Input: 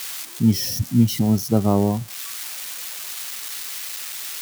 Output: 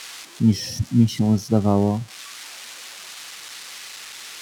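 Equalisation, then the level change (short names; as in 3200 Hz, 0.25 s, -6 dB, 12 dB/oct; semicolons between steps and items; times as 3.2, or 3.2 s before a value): air absorption 59 m; 0.0 dB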